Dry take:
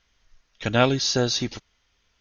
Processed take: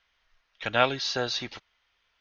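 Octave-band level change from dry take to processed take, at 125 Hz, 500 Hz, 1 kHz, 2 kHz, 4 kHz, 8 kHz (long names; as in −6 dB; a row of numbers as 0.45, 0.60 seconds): −13.0 dB, −5.0 dB, −1.0 dB, −0.5 dB, −4.0 dB, can't be measured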